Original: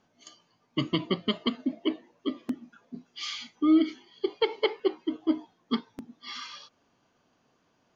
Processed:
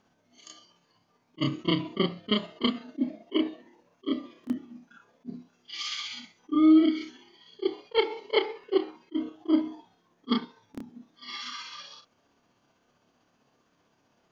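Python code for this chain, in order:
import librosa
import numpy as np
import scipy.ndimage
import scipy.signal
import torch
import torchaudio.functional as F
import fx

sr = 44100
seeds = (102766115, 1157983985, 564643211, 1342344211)

y = fx.stretch_grains(x, sr, factor=1.8, grain_ms=129.0)
y = fx.attack_slew(y, sr, db_per_s=550.0)
y = F.gain(torch.from_numpy(y), 2.0).numpy()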